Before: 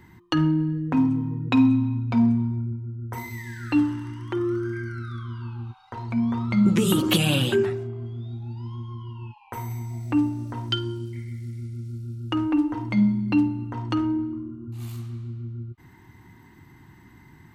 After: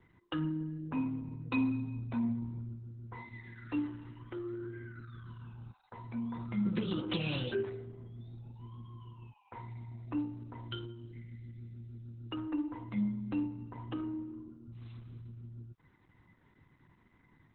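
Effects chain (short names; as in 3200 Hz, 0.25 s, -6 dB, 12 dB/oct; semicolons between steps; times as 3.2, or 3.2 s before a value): resonator 500 Hz, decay 0.21 s, harmonics all, mix 80%; Opus 8 kbps 48000 Hz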